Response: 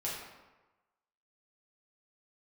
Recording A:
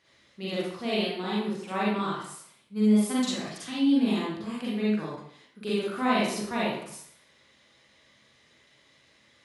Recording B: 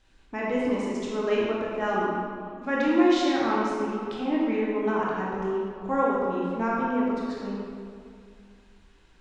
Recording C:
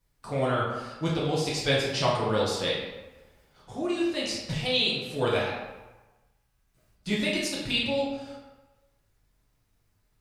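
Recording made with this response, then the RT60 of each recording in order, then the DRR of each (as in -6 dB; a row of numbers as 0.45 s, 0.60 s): C; 0.65 s, 2.4 s, 1.1 s; -7.0 dB, -6.0 dB, -6.5 dB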